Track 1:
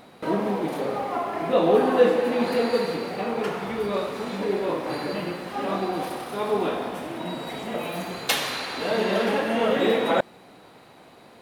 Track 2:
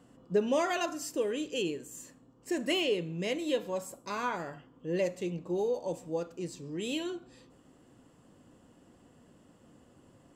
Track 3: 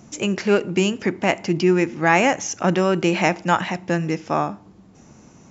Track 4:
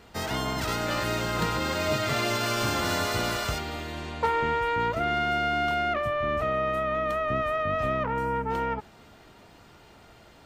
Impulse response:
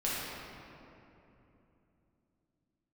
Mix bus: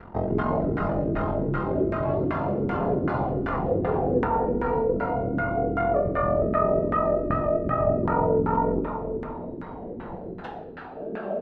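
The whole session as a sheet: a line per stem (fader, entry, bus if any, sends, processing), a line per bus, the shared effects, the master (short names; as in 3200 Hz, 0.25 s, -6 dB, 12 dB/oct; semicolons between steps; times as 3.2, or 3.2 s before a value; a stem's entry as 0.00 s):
-14.5 dB, 2.15 s, send -3.5 dB, cascading phaser falling 0.3 Hz
-10.5 dB, 0.00 s, no send, dry
-16.0 dB, 0.00 s, send -6.5 dB, inharmonic rescaling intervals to 124%; transient shaper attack -10 dB, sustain +3 dB
+3.0 dB, 0.00 s, send -9.5 dB, ring modulator 22 Hz; low shelf 430 Hz +8.5 dB; compressor, threshold -28 dBFS, peak gain reduction 8.5 dB; auto duck -10 dB, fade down 1.95 s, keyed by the third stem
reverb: on, RT60 3.0 s, pre-delay 5 ms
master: de-hum 77.97 Hz, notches 30; LFO low-pass saw down 2.6 Hz 320–1600 Hz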